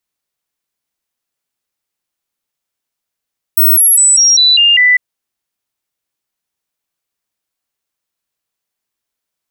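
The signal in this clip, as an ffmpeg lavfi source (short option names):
-f lavfi -i "aevalsrc='0.562*clip(min(mod(t,0.2),0.2-mod(t,0.2))/0.005,0,1)*sin(2*PI*15900*pow(2,-floor(t/0.2)/2)*mod(t,0.2))':d=1.4:s=44100"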